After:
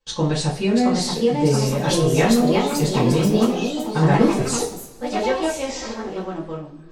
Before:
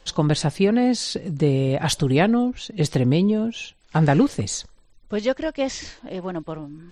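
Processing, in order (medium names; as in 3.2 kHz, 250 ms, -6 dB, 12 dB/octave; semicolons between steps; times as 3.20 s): ever faster or slower copies 700 ms, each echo +3 st, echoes 3; two-slope reverb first 0.28 s, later 1.6 s, from -21 dB, DRR -9.5 dB; gate with hold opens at -30 dBFS; trim -10 dB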